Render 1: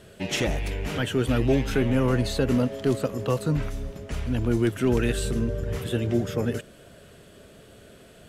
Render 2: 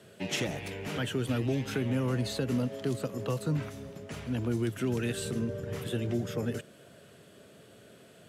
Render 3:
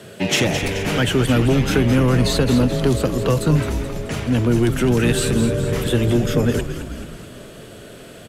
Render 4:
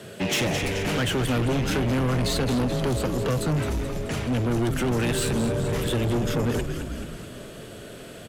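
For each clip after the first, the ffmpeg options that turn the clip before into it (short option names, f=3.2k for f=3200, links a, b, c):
-filter_complex "[0:a]highpass=f=100:w=0.5412,highpass=f=100:w=1.3066,acrossover=split=210|3000[a][b][c];[b]acompressor=threshold=-26dB:ratio=6[d];[a][d][c]amix=inputs=3:normalize=0,volume=-4.5dB"
-filter_complex "[0:a]asplit=2[a][b];[b]aeval=exprs='0.133*sin(PI/2*2*val(0)/0.133)':c=same,volume=-9.5dB[c];[a][c]amix=inputs=2:normalize=0,asplit=7[d][e][f][g][h][i][j];[e]adelay=215,afreqshift=-90,volume=-8.5dB[k];[f]adelay=430,afreqshift=-180,volume=-13.9dB[l];[g]adelay=645,afreqshift=-270,volume=-19.2dB[m];[h]adelay=860,afreqshift=-360,volume=-24.6dB[n];[i]adelay=1075,afreqshift=-450,volume=-29.9dB[o];[j]adelay=1290,afreqshift=-540,volume=-35.3dB[p];[d][k][l][m][n][o][p]amix=inputs=7:normalize=0,volume=8.5dB"
-af "asoftclip=type=tanh:threshold=-19dB,volume=-1.5dB"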